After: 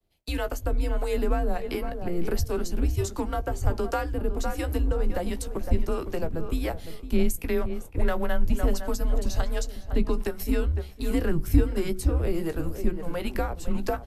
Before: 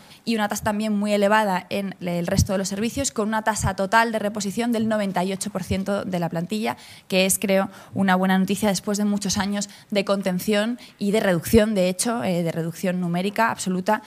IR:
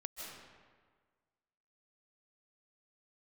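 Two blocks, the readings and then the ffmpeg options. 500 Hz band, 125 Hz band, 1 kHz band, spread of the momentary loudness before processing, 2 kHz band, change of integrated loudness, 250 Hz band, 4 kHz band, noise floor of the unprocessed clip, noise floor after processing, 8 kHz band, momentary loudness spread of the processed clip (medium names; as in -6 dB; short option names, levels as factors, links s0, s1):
-6.5 dB, -3.0 dB, -11.0 dB, 8 LU, -12.0 dB, -6.5 dB, -8.0 dB, -12.0 dB, -47 dBFS, -41 dBFS, -12.5 dB, 5 LU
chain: -filter_complex "[0:a]acrossover=split=140|1800[s0][s1][s2];[s1]adynamicsmooth=sensitivity=7.5:basefreq=990[s3];[s0][s3][s2]amix=inputs=3:normalize=0,acrossover=split=510[s4][s5];[s4]aeval=exprs='val(0)*(1-0.7/2+0.7/2*cos(2*PI*1.4*n/s))':c=same[s6];[s5]aeval=exprs='val(0)*(1-0.7/2-0.7/2*cos(2*PI*1.4*n/s))':c=same[s7];[s6][s7]amix=inputs=2:normalize=0,equalizer=f=12000:w=7.1:g=13.5,bandreject=f=60:t=h:w=6,bandreject=f=120:t=h:w=6,bandreject=f=180:t=h:w=6,bandreject=f=240:t=h:w=6,bandreject=f=300:t=h:w=6,bandreject=f=360:t=h:w=6,bandreject=f=420:t=h:w=6,bandreject=f=480:t=h:w=6,bandreject=f=540:t=h:w=6,asplit=2[s8][s9];[s9]adelay=16,volume=0.282[s10];[s8][s10]amix=inputs=2:normalize=0,asplit=2[s11][s12];[s12]adelay=507,lowpass=f=1600:p=1,volume=0.282,asplit=2[s13][s14];[s14]adelay=507,lowpass=f=1600:p=1,volume=0.31,asplit=2[s15][s16];[s16]adelay=507,lowpass=f=1600:p=1,volume=0.31[s17];[s13][s15][s17]amix=inputs=3:normalize=0[s18];[s11][s18]amix=inputs=2:normalize=0,agate=range=0.0224:threshold=0.0126:ratio=3:detection=peak,afreqshift=-170,acrossover=split=220[s19][s20];[s20]acompressor=threshold=0.0251:ratio=3[s21];[s19][s21]amix=inputs=2:normalize=0,tiltshelf=f=1500:g=4"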